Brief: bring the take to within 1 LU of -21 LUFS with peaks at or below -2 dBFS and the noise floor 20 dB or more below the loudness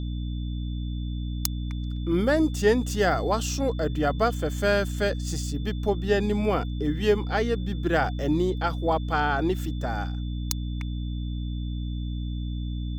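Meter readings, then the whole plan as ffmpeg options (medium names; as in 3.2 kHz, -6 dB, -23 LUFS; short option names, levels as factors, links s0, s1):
hum 60 Hz; highest harmonic 300 Hz; hum level -28 dBFS; steady tone 3.5 kHz; tone level -48 dBFS; loudness -27.0 LUFS; peak level -6.5 dBFS; loudness target -21.0 LUFS
-> -af "bandreject=f=60:t=h:w=4,bandreject=f=120:t=h:w=4,bandreject=f=180:t=h:w=4,bandreject=f=240:t=h:w=4,bandreject=f=300:t=h:w=4"
-af "bandreject=f=3500:w=30"
-af "volume=2,alimiter=limit=0.794:level=0:latency=1"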